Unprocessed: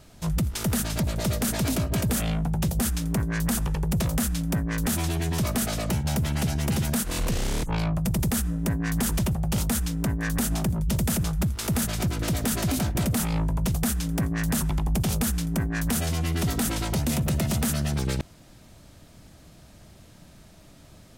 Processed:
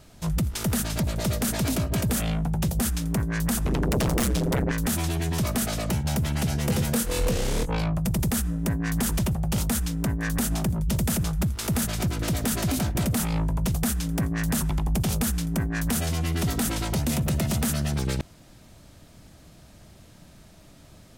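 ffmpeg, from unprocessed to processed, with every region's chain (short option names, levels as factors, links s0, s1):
-filter_complex "[0:a]asettb=1/sr,asplit=3[s0][s1][s2];[s0]atrim=end=3.654[s3];[s1]atrim=start=3.65:end=4.72,asetpts=PTS-STARTPTS,afade=t=in:d=0.004:c=qsin,afade=t=out:st=1.066:d=0.004:c=qsin,highshelf=f=7100:g=-7.5,tremolo=f=130:d=0.974,aeval=exprs='0.119*sin(PI/2*2.82*val(0)/0.119)':c=same[s4];[s2]atrim=start=4.716[s5];[s3][s4]acrossfade=d=0.004:c1=hsin:c2=qsin[s6];[s6][s5]acrossfade=d=0.004:c1=qsin:c2=hsin,asettb=1/sr,asplit=3[s7][s8][s9];[s7]atrim=end=6.494[s10];[s8]atrim=start=6.49:end=7.81,asetpts=PTS-STARTPTS,afade=t=in:d=0.004:c=qsin,afade=t=out:st=1.316:d=0.004:c=qsin,equalizer=f=490:t=o:w=0.23:g=10,asplit=2[s11][s12];[s12]adelay=22,volume=0.422[s13];[s11][s13]amix=inputs=2:normalize=0,atrim=end_sample=58212[s14];[s9]atrim=start=7.806[s15];[s10][s14]acrossfade=d=0.004:c1=hsin:c2=qsin[s16];[s16][s15]acrossfade=d=0.004:c1=qsin:c2=hsin"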